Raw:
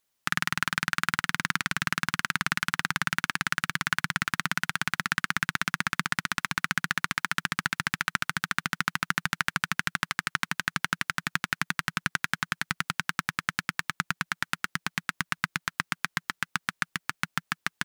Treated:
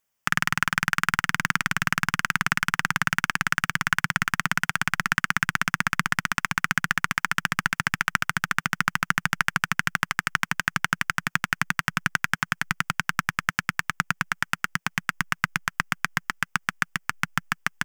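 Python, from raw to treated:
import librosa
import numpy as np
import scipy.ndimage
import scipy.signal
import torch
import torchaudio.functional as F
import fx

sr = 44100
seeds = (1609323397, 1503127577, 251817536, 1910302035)

p1 = fx.graphic_eq_31(x, sr, hz=(315, 4000, 10000), db=(-9, -12, -5))
p2 = fx.backlash(p1, sr, play_db=-31.0)
p3 = p1 + (p2 * 10.0 ** (-5.0 / 20.0))
y = p3 * 10.0 ** (1.0 / 20.0)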